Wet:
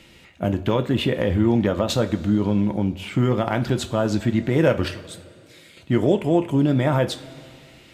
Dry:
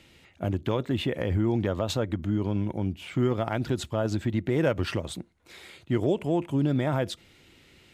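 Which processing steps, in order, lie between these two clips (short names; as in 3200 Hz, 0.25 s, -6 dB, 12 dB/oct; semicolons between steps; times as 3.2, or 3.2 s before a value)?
4.88–5.77 passive tone stack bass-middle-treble 5-5-5; two-slope reverb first 0.28 s, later 2.5 s, from -18 dB, DRR 7 dB; gain +6 dB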